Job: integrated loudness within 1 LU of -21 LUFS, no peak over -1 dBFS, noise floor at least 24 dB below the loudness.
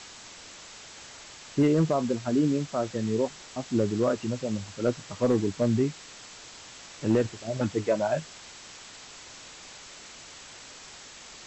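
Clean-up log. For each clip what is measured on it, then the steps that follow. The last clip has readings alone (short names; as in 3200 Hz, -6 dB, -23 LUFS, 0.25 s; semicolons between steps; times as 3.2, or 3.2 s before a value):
clipped 0.3%; flat tops at -15.5 dBFS; noise floor -47 dBFS; noise floor target -52 dBFS; loudness -27.5 LUFS; peak -15.5 dBFS; loudness target -21.0 LUFS
-> clip repair -15.5 dBFS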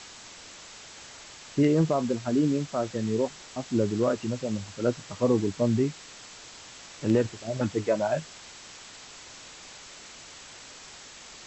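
clipped 0.0%; noise floor -47 dBFS; noise floor target -52 dBFS
-> denoiser 6 dB, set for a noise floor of -47 dBFS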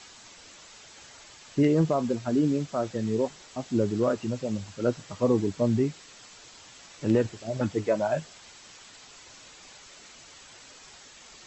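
noise floor -50 dBFS; noise floor target -52 dBFS
-> denoiser 6 dB, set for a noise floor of -50 dBFS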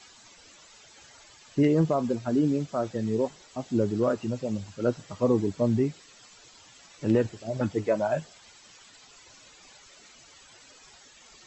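noise floor -54 dBFS; loudness -27.5 LUFS; peak -11.0 dBFS; loudness target -21.0 LUFS
-> gain +6.5 dB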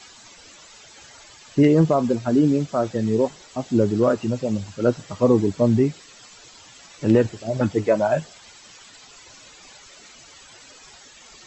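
loudness -21.0 LUFS; peak -4.5 dBFS; noise floor -47 dBFS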